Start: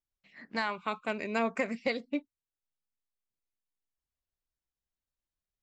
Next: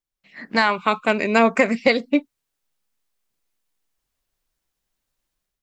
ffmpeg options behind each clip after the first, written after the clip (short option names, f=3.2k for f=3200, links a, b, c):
-af "equalizer=f=73:t=o:w=0.48:g=-13.5,dynaudnorm=f=130:g=5:m=11.5dB,volume=3dB"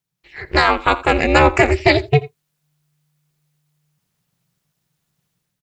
-af "aecho=1:1:84:0.1,aeval=exprs='val(0)*sin(2*PI*150*n/s)':c=same,apsyclip=11dB,volume=-2dB"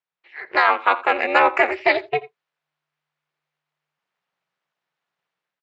-af "highpass=630,lowpass=2.4k"